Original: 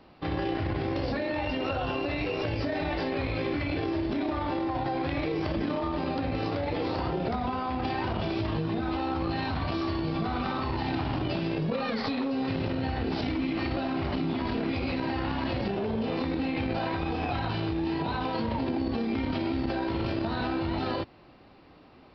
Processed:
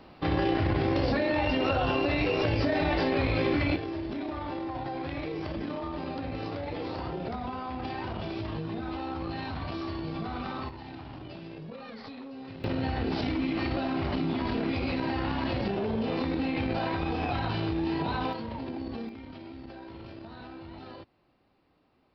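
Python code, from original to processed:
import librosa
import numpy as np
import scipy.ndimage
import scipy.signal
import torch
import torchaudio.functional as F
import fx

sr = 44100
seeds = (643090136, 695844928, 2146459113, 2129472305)

y = fx.gain(x, sr, db=fx.steps((0.0, 3.5), (3.76, -5.0), (10.69, -13.0), (12.64, 0.0), (18.33, -7.0), (19.09, -14.5)))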